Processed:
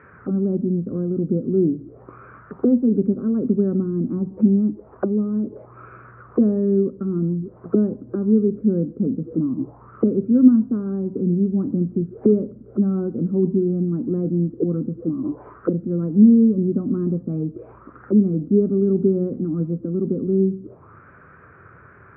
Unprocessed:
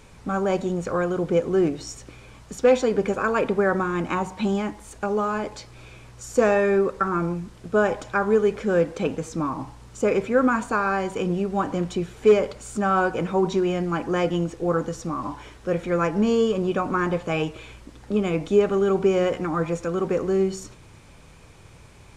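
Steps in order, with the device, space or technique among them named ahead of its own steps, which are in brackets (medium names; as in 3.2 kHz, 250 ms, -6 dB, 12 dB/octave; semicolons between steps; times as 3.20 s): envelope filter bass rig (touch-sensitive low-pass 240–1900 Hz down, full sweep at -24 dBFS; cabinet simulation 76–2000 Hz, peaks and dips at 390 Hz +5 dB, 860 Hz -8 dB, 1.3 kHz +7 dB)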